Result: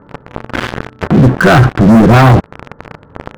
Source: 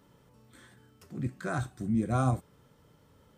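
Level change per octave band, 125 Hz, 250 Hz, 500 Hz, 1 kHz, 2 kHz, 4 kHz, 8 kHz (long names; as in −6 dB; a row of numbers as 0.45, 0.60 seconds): +24.0, +24.5, +26.5, +24.5, +28.5, +31.5, +18.5 decibels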